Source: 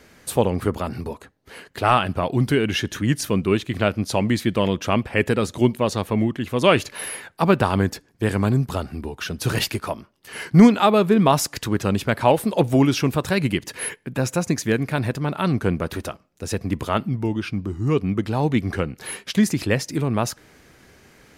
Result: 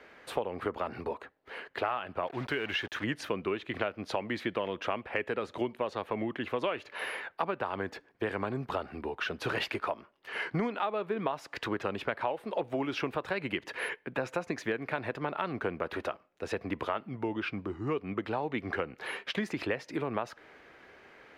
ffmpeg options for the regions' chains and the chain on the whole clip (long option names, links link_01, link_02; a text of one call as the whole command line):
ffmpeg -i in.wav -filter_complex "[0:a]asettb=1/sr,asplit=3[link_01][link_02][link_03];[link_01]atrim=end=2.274[link_04];[link_02]atrim=start=2.27:end=3.04,asetpts=PTS-STARTPTS,afade=type=in:duration=0.004:curve=qsin,afade=type=out:start_time=0.766:duration=0.004:curve=qsin,equalizer=frequency=300:width_type=o:width=2.5:gain=-6,acrusher=bits=5:mix=0:aa=0.5[link_05];[link_03]atrim=start=3.036[link_06];[link_04][link_05]acrossfade=duration=0.004:curve1=hsin:curve2=qsin[link_07];[link_07][link_06]acrossfade=duration=0.004:curve1=qsin:curve2=hsin,acrossover=split=350 3300:gain=0.158 1 0.0708[link_08][link_09][link_10];[link_08][link_09][link_10]amix=inputs=3:normalize=0,acompressor=threshold=-28dB:ratio=12" out.wav